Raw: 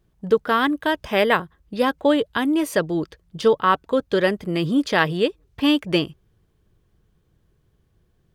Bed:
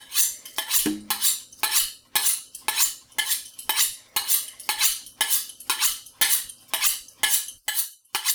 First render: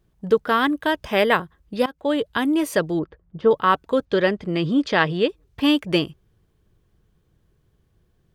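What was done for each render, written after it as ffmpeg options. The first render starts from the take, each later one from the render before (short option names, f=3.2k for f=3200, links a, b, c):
-filter_complex "[0:a]asettb=1/sr,asplit=3[a][b][c];[a]atrim=end=2.994[d];[b]atrim=start=2.99:end=3.51,asetpts=PTS-STARTPTS,afade=t=in:d=0.004:c=qsin,afade=t=out:st=0.516:d=0.004:c=qsin,lowpass=1.4k[e];[c]atrim=start=3.506[f];[d][e]acrossfade=d=0.004:c1=hsin:c2=qsin[g];[g][f]acrossfade=d=0.004:c1=qsin:c2=hsin,asettb=1/sr,asplit=3[h][i][j];[h]atrim=end=4.054[k];[i]atrim=start=4.05:end=5.29,asetpts=PTS-STARTPTS,afade=t=in:d=0.004:c=qsin,afade=t=out:st=1.236:d=0.004:c=qsin,lowpass=5.3k[l];[j]atrim=start=5.286[m];[k][l]acrossfade=d=0.004:c1=hsin:c2=qsin[n];[n][m]acrossfade=d=0.004:c1=qsin:c2=hsin,asplit=2[o][p];[o]atrim=end=1.86,asetpts=PTS-STARTPTS,afade=t=out:st=1.856:d=0.004:c=hsin:silence=0.105925[q];[p]atrim=start=1.86,asetpts=PTS-STARTPTS,afade=t=in:d=0.43:silence=0.105925[r];[q][r]concat=n=2:v=0:a=1"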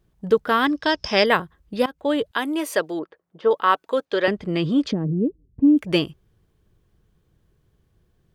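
-filter_complex "[0:a]asettb=1/sr,asplit=3[a][b][c];[a]atrim=end=0.664[d];[b]atrim=start=0.66:end=1.26,asetpts=PTS-STARTPTS,afade=t=in:d=0.004:c=qsin,afade=t=out:st=0.596:d=0.004:c=qsin,lowpass=f=5.3k:t=q:w=15[e];[c]atrim=start=1.256[f];[d][e]acrossfade=d=0.004:c1=hsin:c2=qsin[g];[g][f]acrossfade=d=0.004:c1=qsin:c2=hsin,asettb=1/sr,asplit=3[h][i][j];[h]atrim=end=2.314[k];[i]atrim=start=2.31:end=4.28,asetpts=PTS-STARTPTS,afade=t=in:d=0.004:c=qsin,afade=t=out:st=1.966:d=0.004:c=qsin,highpass=380[l];[j]atrim=start=4.276[m];[k][l]acrossfade=d=0.004:c1=hsin:c2=qsin[n];[n][m]acrossfade=d=0.004:c1=qsin:c2=hsin,asplit=3[o][p][q];[o]afade=t=out:st=4.91:d=0.02[r];[p]lowpass=f=250:t=q:w=2.2,afade=t=in:st=4.91:d=0.02,afade=t=out:st=5.77:d=0.02[s];[q]afade=t=in:st=5.77:d=0.02[t];[r][s][t]amix=inputs=3:normalize=0"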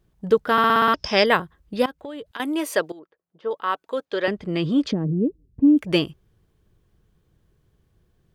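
-filter_complex "[0:a]asettb=1/sr,asplit=3[a][b][c];[a]atrim=end=1.994[d];[b]atrim=start=1.99:end=2.4,asetpts=PTS-STARTPTS,afade=t=in:d=0.004:c=qsin,afade=t=out:st=0.406:d=0.004:c=qsin,acompressor=threshold=-31dB:ratio=10:attack=3.2:release=140:knee=1:detection=peak[e];[c]atrim=start=2.396[f];[d][e]acrossfade=d=0.004:c1=hsin:c2=qsin[g];[g][f]acrossfade=d=0.004:c1=qsin:c2=hsin,asplit=9[h][i][j][k][l][m][n][o][p];[h]atrim=end=0.582[q];[i]atrim=start=0.518:end=0.582[r];[j]atrim=start=0.518:end=0.582[s];[k]atrim=start=0.518:end=0.582[t];[l]atrim=start=0.518:end=0.582[u];[m]atrim=start=0.518:end=0.582[v];[n]atrim=start=0.518:end=0.582[w];[o]atrim=start=0.938:end=2.92,asetpts=PTS-STARTPTS,afade=t=out:st=1.978:d=0.004:c=hsin:silence=0.133352[x];[p]atrim=start=2.92,asetpts=PTS-STARTPTS,afade=t=in:d=1.95:silence=0.133352[y];[q][r]acrossfade=d=0.004:c1=hsin:c2=hsin[z];[z][s]acrossfade=d=0.004:c1=hsin:c2=hsin[aa];[aa][t]acrossfade=d=0.004:c1=hsin:c2=hsin[ab];[ab][u]acrossfade=d=0.004:c1=hsin:c2=hsin[ac];[ac][v]acrossfade=d=0.004:c1=hsin:c2=hsin[ad];[ad][w]acrossfade=d=0.004:c1=hsin:c2=hsin[ae];[x][y]concat=n=2:v=0:a=1[af];[ae][af]acrossfade=d=0.004:c1=hsin:c2=hsin"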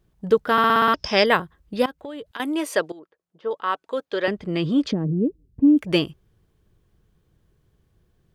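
-filter_complex "[0:a]asettb=1/sr,asplit=3[a][b][c];[a]atrim=end=2.494[d];[b]atrim=start=2.49:end=3.96,asetpts=PTS-STARTPTS,afade=t=in:d=0.004:c=qsin,afade=t=out:st=1.466:d=0.004:c=qsin,lowpass=11k[e];[c]atrim=start=3.956[f];[d][e]acrossfade=d=0.004:c1=hsin:c2=qsin[g];[g][f]acrossfade=d=0.004:c1=qsin:c2=hsin"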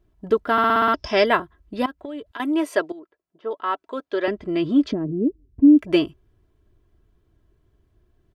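-af "highshelf=f=3.1k:g=-9,aecho=1:1:3:0.57"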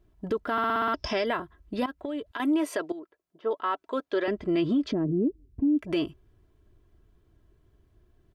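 -af "acompressor=threshold=-19dB:ratio=6,alimiter=limit=-18.5dB:level=0:latency=1:release=38"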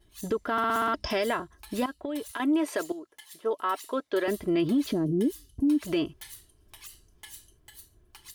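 -filter_complex "[1:a]volume=-25dB[a];[0:a][a]amix=inputs=2:normalize=0"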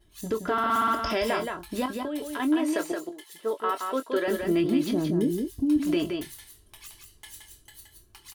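-filter_complex "[0:a]asplit=2[a][b];[b]adelay=23,volume=-9.5dB[c];[a][c]amix=inputs=2:normalize=0,aecho=1:1:172:0.562"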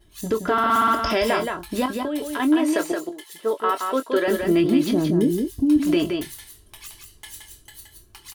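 -af "volume=5.5dB"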